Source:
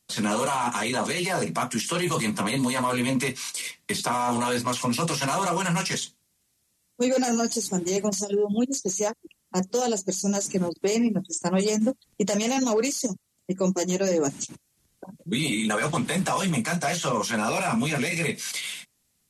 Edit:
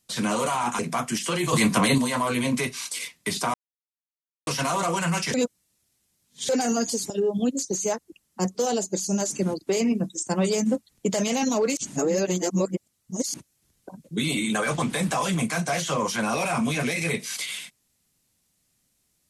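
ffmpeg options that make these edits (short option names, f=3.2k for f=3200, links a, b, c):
-filter_complex "[0:a]asplit=11[a][b][c][d][e][f][g][h][i][j][k];[a]atrim=end=0.792[l];[b]atrim=start=1.418:end=2.162[m];[c]atrim=start=2.158:end=2.612,asetpts=PTS-STARTPTS,volume=6dB[n];[d]atrim=start=2.608:end=4.17,asetpts=PTS-STARTPTS,afade=t=out:st=1.558:d=0.004:c=hsin[o];[e]atrim=start=4.17:end=5.1,asetpts=PTS-STARTPTS,volume=0[p];[f]atrim=start=5.1:end=5.972,asetpts=PTS-STARTPTS,afade=t=in:d=0.004:c=hsin[q];[g]atrim=start=5.968:end=7.122,asetpts=PTS-STARTPTS,areverse[r];[h]atrim=start=7.118:end=7.732[s];[i]atrim=start=8.248:end=12.922[t];[j]atrim=start=12.918:end=14.492,asetpts=PTS-STARTPTS,areverse[u];[k]atrim=start=14.488[v];[l][m]acrossfade=d=0.004:c1=hsin:c2=hsin[w];[w][n]acrossfade=d=0.004:c1=hsin:c2=hsin[x];[o][p][q]concat=n=3:v=0:a=1[y];[x][y]acrossfade=d=0.004:c1=hsin:c2=hsin[z];[z][r]acrossfade=d=0.004:c1=hsin:c2=hsin[aa];[aa][s]acrossfade=d=0.004:c1=hsin:c2=hsin[ab];[ab][t]acrossfade=d=0.004:c1=hsin:c2=hsin[ac];[ac][u]acrossfade=d=0.004:c1=hsin:c2=hsin[ad];[ad][v]acrossfade=d=0.004:c1=hsin:c2=hsin"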